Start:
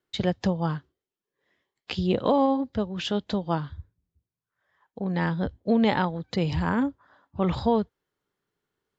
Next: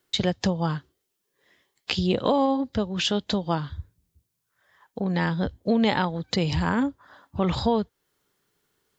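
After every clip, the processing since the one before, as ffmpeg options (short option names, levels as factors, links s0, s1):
-af "highshelf=f=3700:g=10,acompressor=threshold=0.0126:ratio=1.5,volume=2.24"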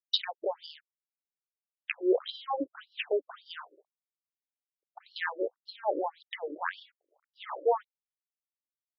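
-af "aeval=exprs='sgn(val(0))*max(abs(val(0))-0.00422,0)':c=same,lowshelf=f=290:g=8,afftfilt=real='re*between(b*sr/1024,410*pow(4100/410,0.5+0.5*sin(2*PI*1.8*pts/sr))/1.41,410*pow(4100/410,0.5+0.5*sin(2*PI*1.8*pts/sr))*1.41)':imag='im*between(b*sr/1024,410*pow(4100/410,0.5+0.5*sin(2*PI*1.8*pts/sr))/1.41,410*pow(4100/410,0.5+0.5*sin(2*PI*1.8*pts/sr))*1.41)':win_size=1024:overlap=0.75"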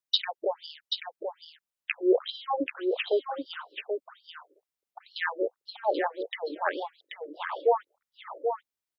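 -af "aecho=1:1:783:0.501,volume=1.41"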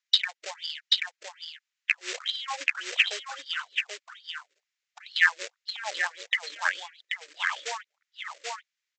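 -af "alimiter=limit=0.141:level=0:latency=1:release=490,aresample=16000,acrusher=bits=4:mode=log:mix=0:aa=0.000001,aresample=44100,highpass=f=1900:t=q:w=1.9,volume=2.24"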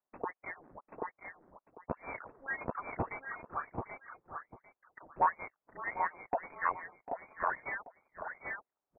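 -af "asoftclip=type=tanh:threshold=0.168,aecho=1:1:748:0.178,lowpass=f=2300:t=q:w=0.5098,lowpass=f=2300:t=q:w=0.6013,lowpass=f=2300:t=q:w=0.9,lowpass=f=2300:t=q:w=2.563,afreqshift=-2700,volume=0.708"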